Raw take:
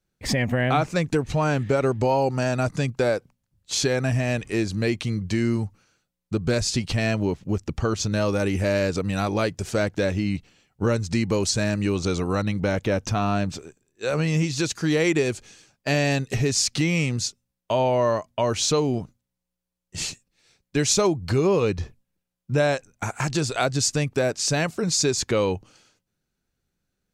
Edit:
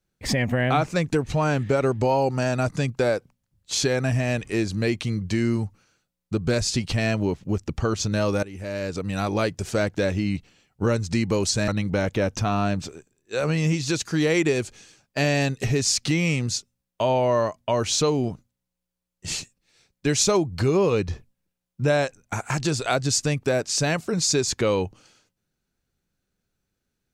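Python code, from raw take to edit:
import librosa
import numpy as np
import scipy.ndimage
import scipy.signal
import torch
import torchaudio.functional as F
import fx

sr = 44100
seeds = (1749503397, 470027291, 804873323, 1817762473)

y = fx.edit(x, sr, fx.fade_in_from(start_s=8.43, length_s=0.91, floor_db=-19.5),
    fx.cut(start_s=11.68, length_s=0.7), tone=tone)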